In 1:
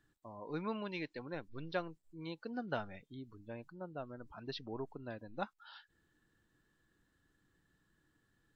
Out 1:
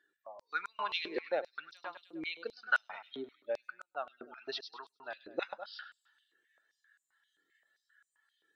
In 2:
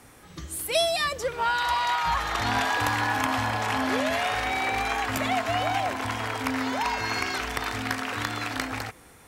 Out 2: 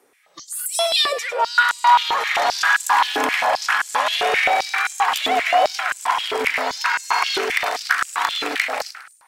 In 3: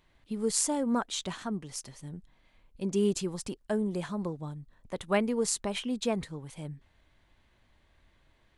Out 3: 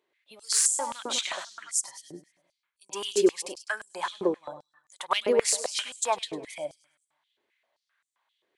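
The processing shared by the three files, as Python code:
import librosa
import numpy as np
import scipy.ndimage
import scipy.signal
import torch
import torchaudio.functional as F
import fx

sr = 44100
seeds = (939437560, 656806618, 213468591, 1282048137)

p1 = fx.noise_reduce_blind(x, sr, reduce_db=15)
p2 = fx.echo_feedback(p1, sr, ms=102, feedback_pct=46, wet_db=-13.0)
p3 = np.clip(p2, -10.0 ** (-24.0 / 20.0), 10.0 ** (-24.0 / 20.0))
p4 = p2 + (p3 * 10.0 ** (-4.0 / 20.0))
p5 = fx.filter_held_highpass(p4, sr, hz=7.6, low_hz=400.0, high_hz=7600.0)
y = p5 * 10.0 ** (1.0 / 20.0)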